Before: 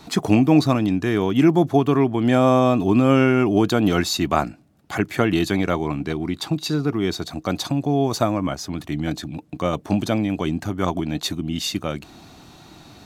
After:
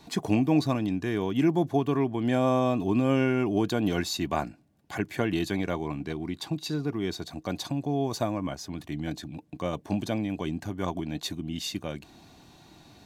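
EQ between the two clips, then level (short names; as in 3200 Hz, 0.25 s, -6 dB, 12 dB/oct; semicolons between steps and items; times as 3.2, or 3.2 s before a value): Butterworth band-stop 1300 Hz, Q 7.6; -8.0 dB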